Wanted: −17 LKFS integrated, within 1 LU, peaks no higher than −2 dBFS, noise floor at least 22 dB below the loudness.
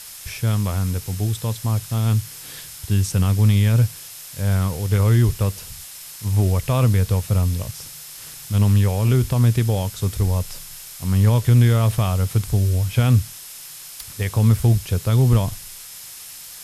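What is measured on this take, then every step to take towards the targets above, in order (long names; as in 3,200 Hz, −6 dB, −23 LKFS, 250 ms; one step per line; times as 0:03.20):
interfering tone 5,200 Hz; level of the tone −49 dBFS; background noise floor −38 dBFS; target noise floor −42 dBFS; integrated loudness −19.5 LKFS; sample peak −5.5 dBFS; target loudness −17.0 LKFS
→ notch filter 5,200 Hz, Q 30
noise reduction from a noise print 6 dB
level +2.5 dB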